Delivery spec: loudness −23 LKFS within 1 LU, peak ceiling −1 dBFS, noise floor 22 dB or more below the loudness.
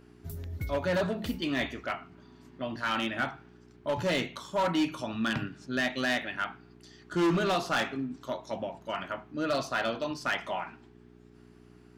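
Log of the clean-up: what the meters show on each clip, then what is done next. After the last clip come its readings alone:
share of clipped samples 1.3%; peaks flattened at −22.0 dBFS; mains hum 60 Hz; hum harmonics up to 420 Hz; level of the hum −55 dBFS; integrated loudness −31.5 LKFS; sample peak −22.0 dBFS; target loudness −23.0 LKFS
→ clipped peaks rebuilt −22 dBFS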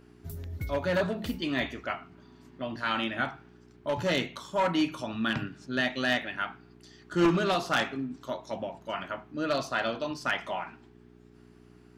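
share of clipped samples 0.0%; mains hum 60 Hz; hum harmonics up to 420 Hz; level of the hum −57 dBFS
→ hum removal 60 Hz, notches 7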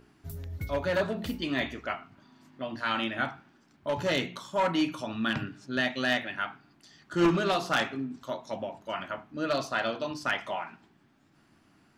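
mains hum none found; integrated loudness −31.0 LKFS; sample peak −13.0 dBFS; target loudness −23.0 LKFS
→ level +8 dB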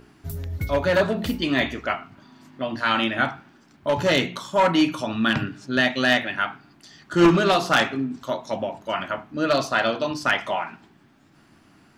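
integrated loudness −23.0 LKFS; sample peak −5.0 dBFS; background noise floor −56 dBFS

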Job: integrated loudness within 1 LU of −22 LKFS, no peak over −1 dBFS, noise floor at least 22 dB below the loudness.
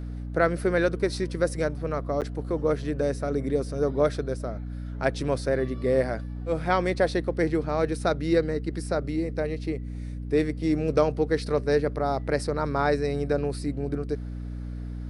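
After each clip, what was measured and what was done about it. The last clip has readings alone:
number of dropouts 1; longest dropout 8.2 ms; mains hum 60 Hz; hum harmonics up to 300 Hz; level of the hum −32 dBFS; integrated loudness −27.0 LKFS; sample peak −8.5 dBFS; target loudness −22.0 LKFS
→ repair the gap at 0:02.21, 8.2 ms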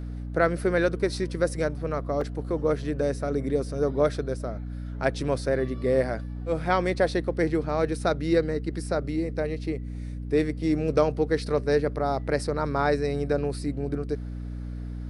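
number of dropouts 0; mains hum 60 Hz; hum harmonics up to 300 Hz; level of the hum −32 dBFS
→ hum removal 60 Hz, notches 5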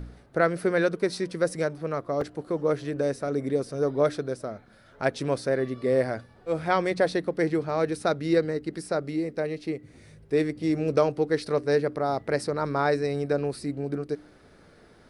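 mains hum none found; integrated loudness −27.5 LKFS; sample peak −9.0 dBFS; target loudness −22.0 LKFS
→ level +5.5 dB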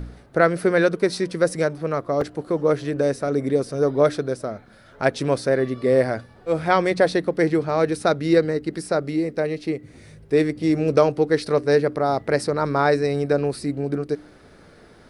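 integrated loudness −22.0 LKFS; sample peak −3.5 dBFS; background noise floor −50 dBFS

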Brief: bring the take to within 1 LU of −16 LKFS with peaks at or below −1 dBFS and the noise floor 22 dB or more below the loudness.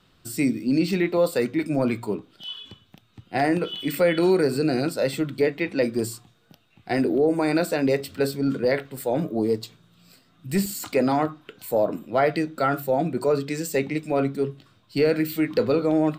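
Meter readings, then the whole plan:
number of dropouts 2; longest dropout 2.4 ms; integrated loudness −24.0 LKFS; sample peak −10.5 dBFS; target loudness −16.0 LKFS
→ repair the gap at 0:08.97/0:10.66, 2.4 ms
level +8 dB

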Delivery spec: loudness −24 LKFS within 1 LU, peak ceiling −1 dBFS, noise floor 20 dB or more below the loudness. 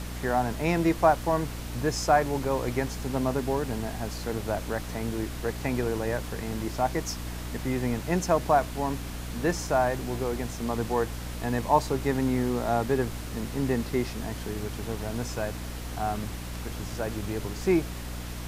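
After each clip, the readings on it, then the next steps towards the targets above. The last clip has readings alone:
mains hum 60 Hz; hum harmonics up to 300 Hz; level of the hum −35 dBFS; background noise floor −36 dBFS; target noise floor −49 dBFS; integrated loudness −29.0 LKFS; sample peak −8.0 dBFS; target loudness −24.0 LKFS
→ hum removal 60 Hz, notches 5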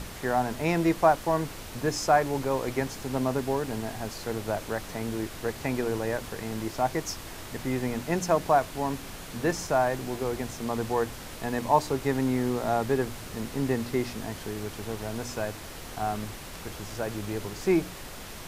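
mains hum none found; background noise floor −41 dBFS; target noise floor −49 dBFS
→ noise reduction from a noise print 8 dB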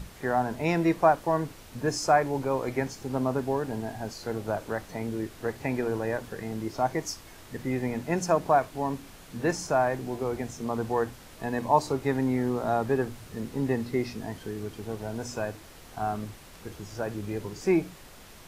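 background noise floor −49 dBFS; target noise floor −50 dBFS
→ noise reduction from a noise print 6 dB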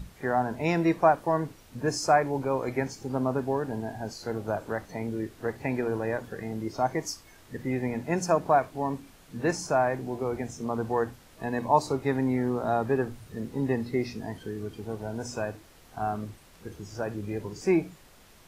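background noise floor −55 dBFS; integrated loudness −29.5 LKFS; sample peak −8.5 dBFS; target loudness −24.0 LKFS
→ level +5.5 dB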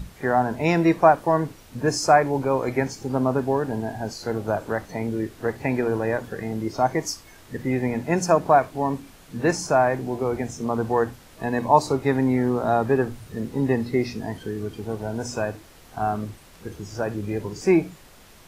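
integrated loudness −24.0 LKFS; sample peak −3.0 dBFS; background noise floor −49 dBFS

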